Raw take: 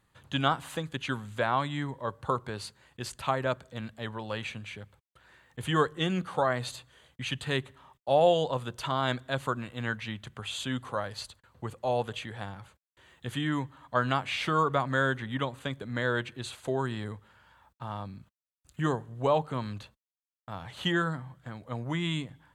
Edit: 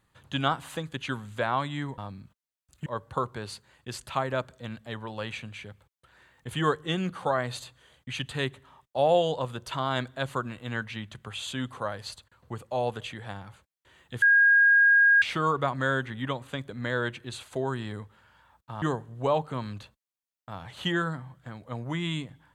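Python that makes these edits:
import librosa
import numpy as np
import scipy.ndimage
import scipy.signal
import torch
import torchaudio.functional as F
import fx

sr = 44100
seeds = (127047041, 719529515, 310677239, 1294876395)

y = fx.edit(x, sr, fx.bleep(start_s=13.34, length_s=1.0, hz=1630.0, db=-15.5),
    fx.move(start_s=17.94, length_s=0.88, to_s=1.98), tone=tone)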